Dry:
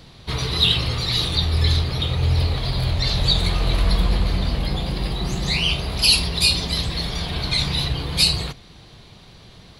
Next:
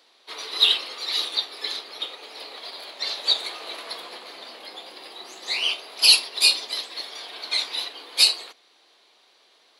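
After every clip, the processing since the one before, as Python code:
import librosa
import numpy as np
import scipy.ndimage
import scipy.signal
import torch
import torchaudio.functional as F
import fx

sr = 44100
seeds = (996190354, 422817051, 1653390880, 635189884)

y = scipy.signal.sosfilt(scipy.signal.bessel(8, 540.0, 'highpass', norm='mag', fs=sr, output='sos'), x)
y = fx.upward_expand(y, sr, threshold_db=-34.0, expansion=1.5)
y = y * librosa.db_to_amplitude(2.0)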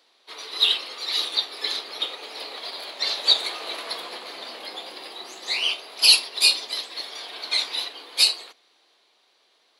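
y = fx.rider(x, sr, range_db=5, speed_s=2.0)
y = y * librosa.db_to_amplitude(-1.0)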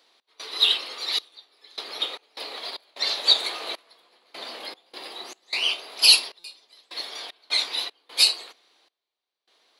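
y = fx.step_gate(x, sr, bpm=76, pattern='x.xxxx...xx.x', floor_db=-24.0, edge_ms=4.5)
y = fx.buffer_glitch(y, sr, at_s=(6.39,), block=256, repeats=8)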